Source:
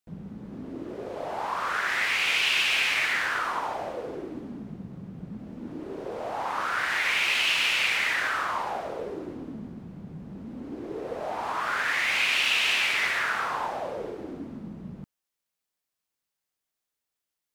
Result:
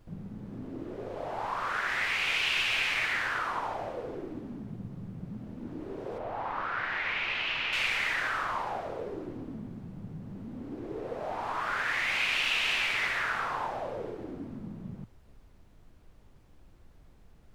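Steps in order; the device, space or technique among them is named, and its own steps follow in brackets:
0:06.18–0:07.73: high-frequency loss of the air 220 metres
car interior (parametric band 110 Hz +8.5 dB 0.52 octaves; high-shelf EQ 4,900 Hz −6.5 dB; brown noise bed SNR 20 dB)
level −3 dB

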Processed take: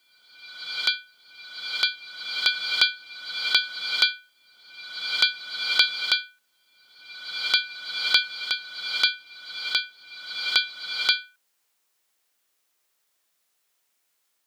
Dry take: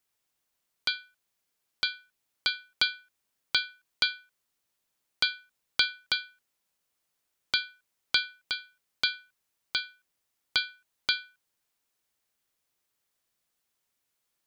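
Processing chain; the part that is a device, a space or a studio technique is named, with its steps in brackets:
ghost voice (reversed playback; convolution reverb RT60 1.4 s, pre-delay 11 ms, DRR 3 dB; reversed playback; high-pass filter 500 Hz 6 dB per octave)
level +6 dB

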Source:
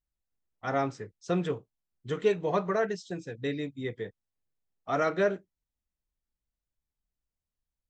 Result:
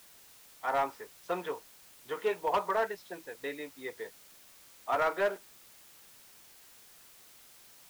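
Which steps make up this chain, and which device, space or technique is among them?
drive-through speaker (band-pass filter 540–2,900 Hz; parametric band 930 Hz +11 dB 0.29 octaves; hard clipping −22.5 dBFS, distortion −16 dB; white noise bed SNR 20 dB)

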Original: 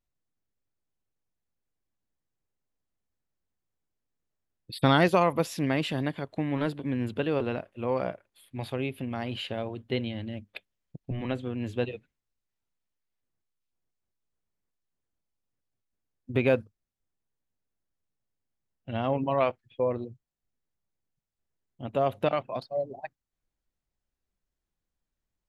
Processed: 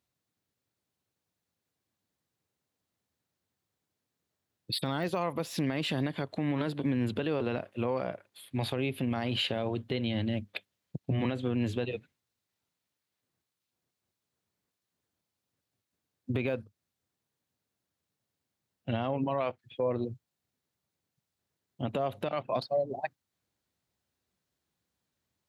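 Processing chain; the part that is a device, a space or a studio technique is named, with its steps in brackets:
broadcast voice chain (high-pass filter 80 Hz 24 dB per octave; de-essing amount 90%; downward compressor 5 to 1, threshold −31 dBFS, peak gain reduction 13.5 dB; parametric band 4,000 Hz +3.5 dB 0.51 octaves; brickwall limiter −26.5 dBFS, peak gain reduction 10 dB)
level +6 dB

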